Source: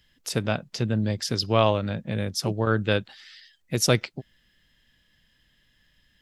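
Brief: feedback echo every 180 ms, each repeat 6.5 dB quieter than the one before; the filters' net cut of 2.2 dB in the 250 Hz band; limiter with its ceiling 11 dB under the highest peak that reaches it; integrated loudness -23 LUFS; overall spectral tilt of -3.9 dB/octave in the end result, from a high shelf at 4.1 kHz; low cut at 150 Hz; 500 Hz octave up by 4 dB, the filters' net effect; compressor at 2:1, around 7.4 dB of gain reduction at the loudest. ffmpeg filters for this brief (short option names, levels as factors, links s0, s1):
-af "highpass=150,equalizer=f=250:t=o:g=-3.5,equalizer=f=500:t=o:g=5.5,highshelf=f=4100:g=4.5,acompressor=threshold=0.0501:ratio=2,alimiter=limit=0.0708:level=0:latency=1,aecho=1:1:180|360|540|720|900|1080:0.473|0.222|0.105|0.0491|0.0231|0.0109,volume=3.55"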